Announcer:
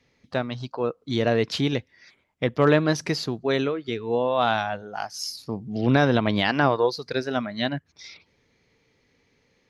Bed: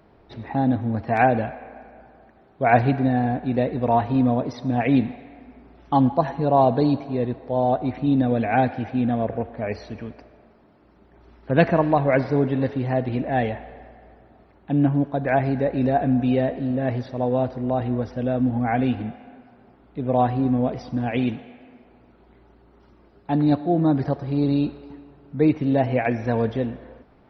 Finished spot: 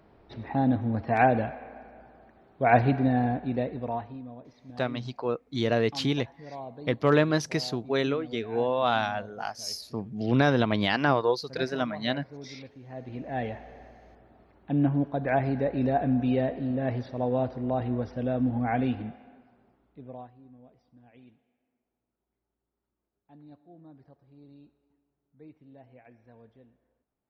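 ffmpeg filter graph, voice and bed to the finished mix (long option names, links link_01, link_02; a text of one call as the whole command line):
ffmpeg -i stem1.wav -i stem2.wav -filter_complex "[0:a]adelay=4450,volume=-3dB[link_01];[1:a]volume=14.5dB,afade=type=out:start_time=3.23:duration=0.97:silence=0.105925,afade=type=in:start_time=12.84:duration=1:silence=0.125893,afade=type=out:start_time=18.76:duration=1.55:silence=0.0446684[link_02];[link_01][link_02]amix=inputs=2:normalize=0" out.wav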